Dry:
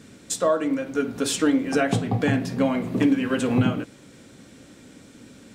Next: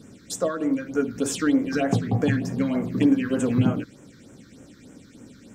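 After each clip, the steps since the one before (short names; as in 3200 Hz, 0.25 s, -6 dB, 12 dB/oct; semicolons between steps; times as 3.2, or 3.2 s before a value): phaser stages 6, 3.3 Hz, lowest notch 690–4200 Hz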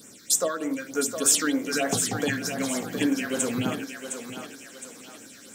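RIAA curve recording; thinning echo 0.712 s, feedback 43%, high-pass 350 Hz, level -7 dB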